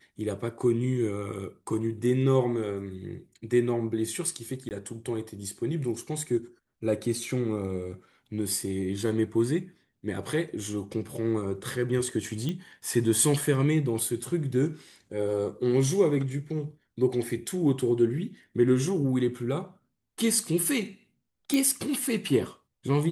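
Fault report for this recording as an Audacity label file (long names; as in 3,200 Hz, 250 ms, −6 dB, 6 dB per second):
4.690000	4.710000	drop-out 19 ms
12.490000	12.490000	click −19 dBFS
21.540000	21.540000	click −12 dBFS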